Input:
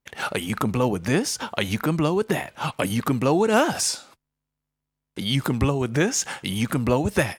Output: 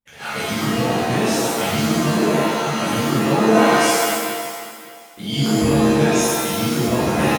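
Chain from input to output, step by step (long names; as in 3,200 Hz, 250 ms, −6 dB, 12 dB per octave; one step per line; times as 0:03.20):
repeating echo 562 ms, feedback 20%, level −16 dB
reverb with rising layers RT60 1.3 s, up +7 semitones, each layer −2 dB, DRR −11.5 dB
level −11 dB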